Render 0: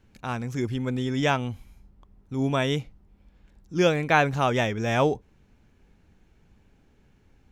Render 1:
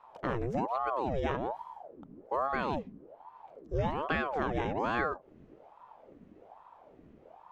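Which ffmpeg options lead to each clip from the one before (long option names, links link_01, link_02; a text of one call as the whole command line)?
ffmpeg -i in.wav -af "lowpass=frequency=1000:poles=1,acompressor=threshold=-32dB:ratio=6,aeval=exprs='val(0)*sin(2*PI*590*n/s+590*0.65/1.2*sin(2*PI*1.2*n/s))':channel_layout=same,volume=6dB" out.wav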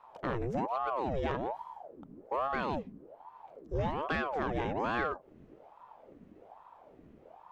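ffmpeg -i in.wav -af "asoftclip=type=tanh:threshold=-22dB" out.wav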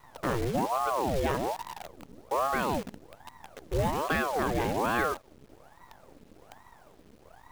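ffmpeg -i in.wav -af "acrusher=bits=8:dc=4:mix=0:aa=0.000001,volume=4.5dB" out.wav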